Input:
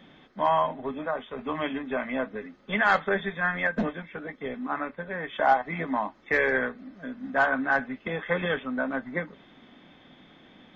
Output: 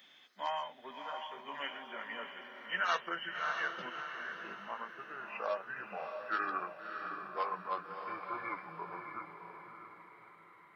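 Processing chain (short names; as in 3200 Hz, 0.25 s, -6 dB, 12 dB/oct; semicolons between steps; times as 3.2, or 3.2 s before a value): gliding pitch shift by -9 st starting unshifted; differentiator; diffused feedback echo 0.63 s, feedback 44%, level -6 dB; gain +6.5 dB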